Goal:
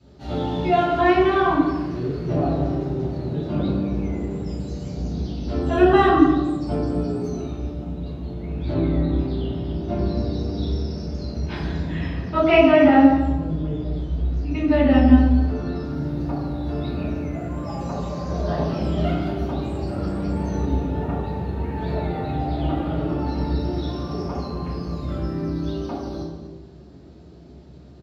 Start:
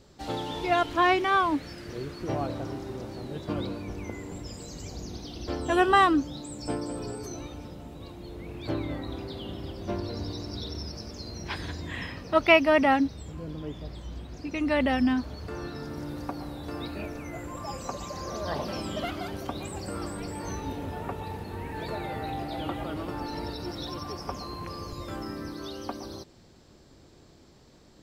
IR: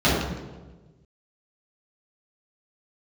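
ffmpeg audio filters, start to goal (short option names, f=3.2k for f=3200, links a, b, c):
-filter_complex "[0:a]aecho=1:1:237:0.168[a];[1:a]atrim=start_sample=2205[b];[a][b]afir=irnorm=-1:irlink=0,volume=-17.5dB"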